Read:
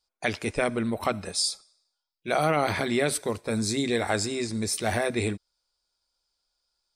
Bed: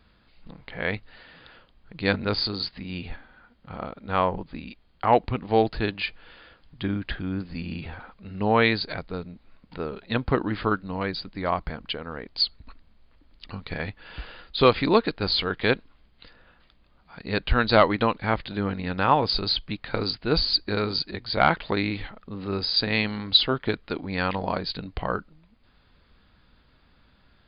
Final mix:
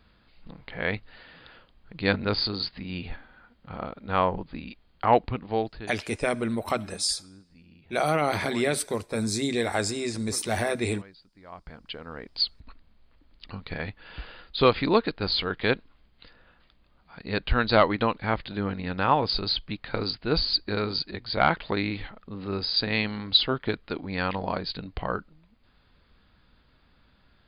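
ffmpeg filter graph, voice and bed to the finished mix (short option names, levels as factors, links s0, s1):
-filter_complex "[0:a]adelay=5650,volume=0.944[s0];[1:a]volume=8.91,afade=t=out:st=5.1:d=0.87:silence=0.0891251,afade=t=in:st=11.48:d=0.85:silence=0.105925[s1];[s0][s1]amix=inputs=2:normalize=0"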